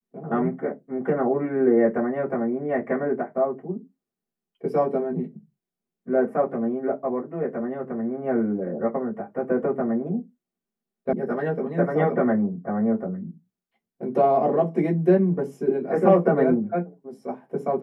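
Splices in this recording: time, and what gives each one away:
11.13 sound cut off

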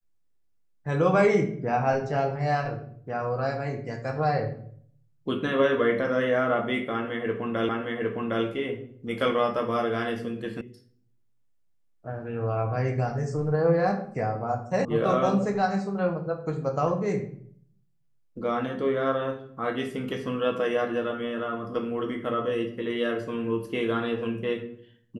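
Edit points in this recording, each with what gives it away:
7.69 repeat of the last 0.76 s
10.61 sound cut off
14.85 sound cut off

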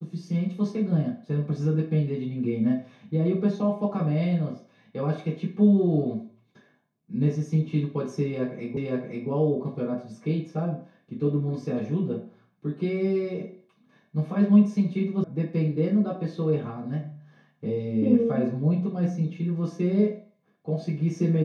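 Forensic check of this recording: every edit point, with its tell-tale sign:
8.77 repeat of the last 0.52 s
15.24 sound cut off

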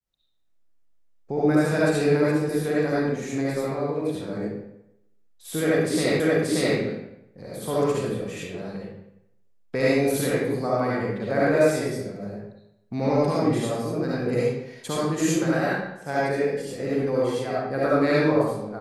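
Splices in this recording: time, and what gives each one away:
6.2 repeat of the last 0.58 s

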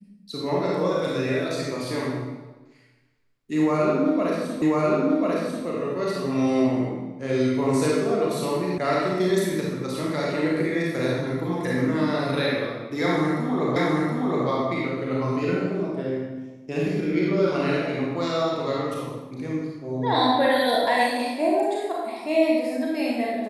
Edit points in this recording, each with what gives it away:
4.62 repeat of the last 1.04 s
8.78 sound cut off
13.76 repeat of the last 0.72 s

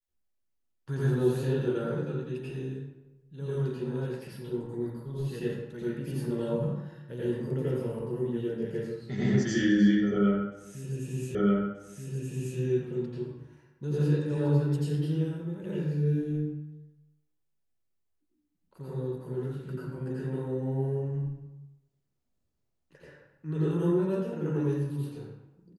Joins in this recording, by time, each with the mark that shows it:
11.35 repeat of the last 1.23 s

